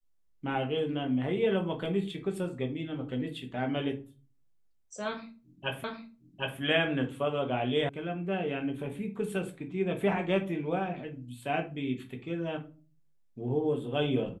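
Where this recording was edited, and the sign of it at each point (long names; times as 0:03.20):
0:05.84: the same again, the last 0.76 s
0:07.89: cut off before it has died away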